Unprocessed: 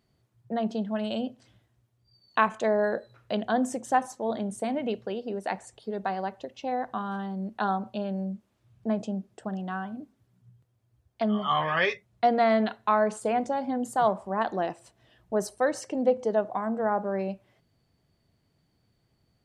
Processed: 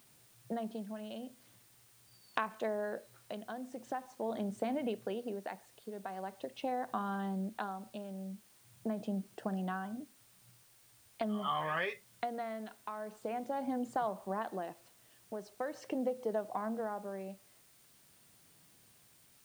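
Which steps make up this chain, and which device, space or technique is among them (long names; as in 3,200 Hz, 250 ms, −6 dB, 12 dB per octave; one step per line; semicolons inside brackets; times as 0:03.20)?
medium wave at night (band-pass filter 120–4,000 Hz; downward compressor, threshold −33 dBFS, peak gain reduction 16 dB; amplitude tremolo 0.43 Hz, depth 63%; steady tone 9,000 Hz −72 dBFS; white noise bed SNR 25 dB)
level +1 dB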